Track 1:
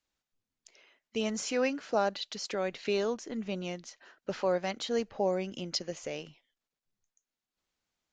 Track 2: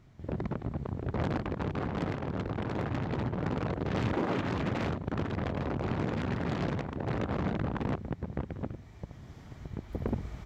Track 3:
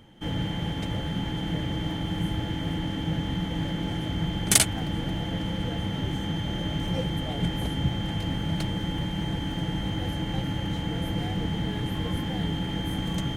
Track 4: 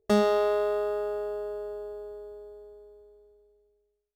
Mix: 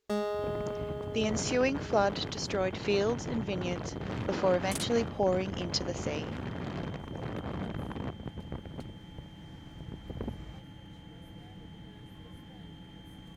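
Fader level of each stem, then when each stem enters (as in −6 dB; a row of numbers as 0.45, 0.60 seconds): +1.5, −5.5, −19.5, −9.5 decibels; 0.00, 0.15, 0.20, 0.00 seconds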